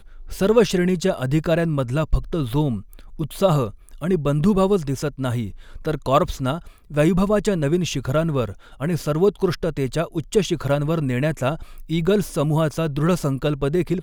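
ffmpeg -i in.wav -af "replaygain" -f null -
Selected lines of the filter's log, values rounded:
track_gain = +1.5 dB
track_peak = 0.466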